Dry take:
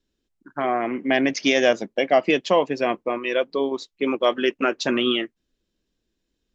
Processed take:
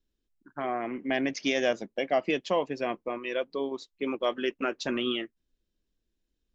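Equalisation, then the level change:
low-shelf EQ 68 Hz +10 dB
−8.5 dB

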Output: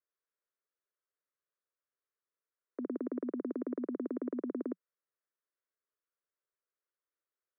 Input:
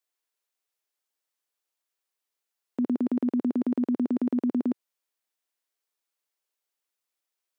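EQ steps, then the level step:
Butterworth high-pass 180 Hz 72 dB per octave
high-frequency loss of the air 480 metres
phaser with its sweep stopped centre 800 Hz, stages 6
0.0 dB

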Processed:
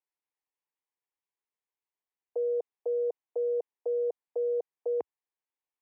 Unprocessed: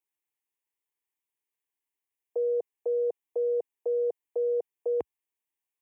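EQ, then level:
resonant band-pass 810 Hz, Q 0.69
0.0 dB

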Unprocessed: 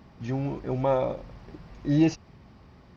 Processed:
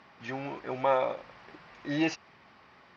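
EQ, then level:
resonant band-pass 1,900 Hz, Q 0.83
+6.5 dB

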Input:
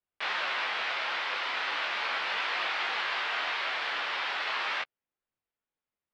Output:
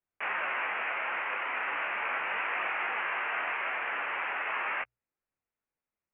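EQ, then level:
Butterworth low-pass 2,700 Hz 72 dB per octave
low-shelf EQ 150 Hz +3 dB
mains-hum notches 60/120 Hz
0.0 dB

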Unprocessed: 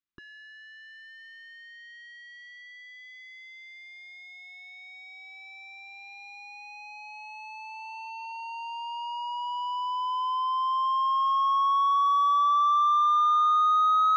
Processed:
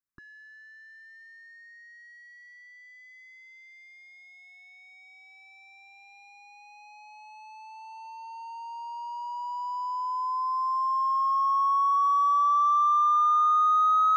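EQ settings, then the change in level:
dynamic equaliser 5,100 Hz, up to +5 dB, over −47 dBFS, Q 1.1
phaser with its sweep stopped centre 1,300 Hz, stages 4
0.0 dB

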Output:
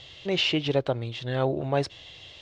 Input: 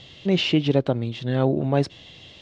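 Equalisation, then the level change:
parametric band 210 Hz −12.5 dB 1.3 octaves
0.0 dB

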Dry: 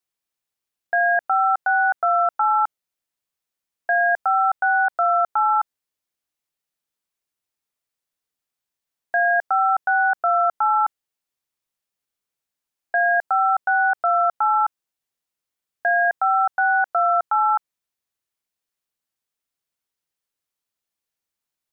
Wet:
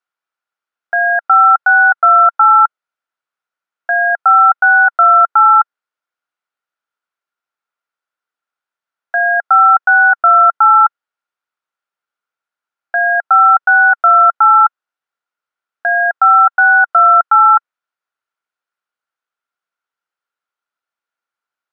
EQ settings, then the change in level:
resonant band-pass 1,100 Hz, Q 0.76
parametric band 1,400 Hz +12.5 dB 0.22 octaves
+5.0 dB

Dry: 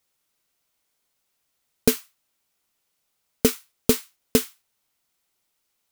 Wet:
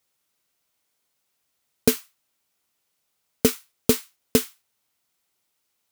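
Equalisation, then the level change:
high-pass filter 52 Hz
0.0 dB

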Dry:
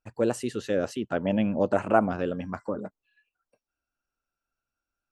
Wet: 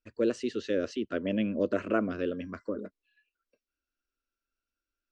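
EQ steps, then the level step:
low-pass filter 5,700 Hz 24 dB per octave
phaser with its sweep stopped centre 340 Hz, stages 4
0.0 dB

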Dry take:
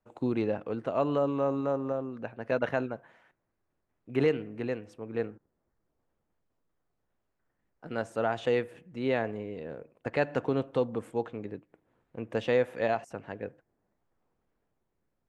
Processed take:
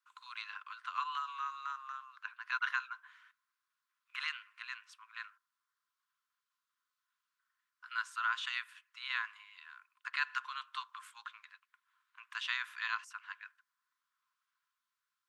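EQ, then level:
Chebyshev high-pass with heavy ripple 1,000 Hz, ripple 6 dB
+5.5 dB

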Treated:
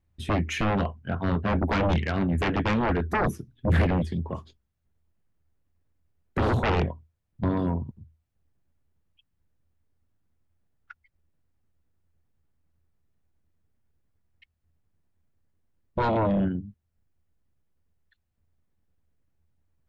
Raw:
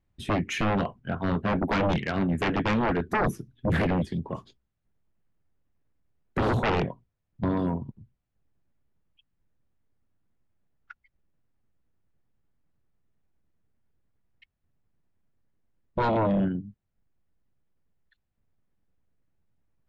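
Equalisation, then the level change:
parametric band 80 Hz +14 dB 0.23 octaves
0.0 dB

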